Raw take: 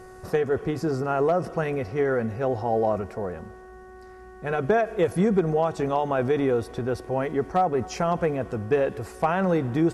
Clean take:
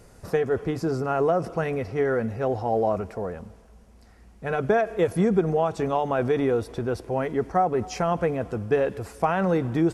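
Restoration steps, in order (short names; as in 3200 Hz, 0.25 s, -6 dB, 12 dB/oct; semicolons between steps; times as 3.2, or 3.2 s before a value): clip repair -12.5 dBFS; de-hum 371.7 Hz, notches 5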